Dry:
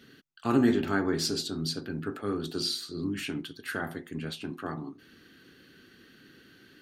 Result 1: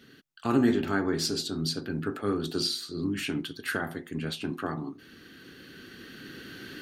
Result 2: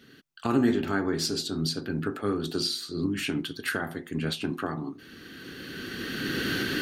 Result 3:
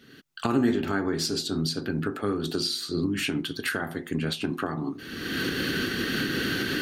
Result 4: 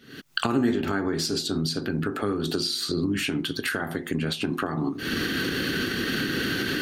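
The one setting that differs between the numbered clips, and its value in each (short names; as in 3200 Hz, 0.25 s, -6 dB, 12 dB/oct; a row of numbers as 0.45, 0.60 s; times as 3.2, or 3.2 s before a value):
recorder AGC, rising by: 5.5, 14, 36, 90 dB/s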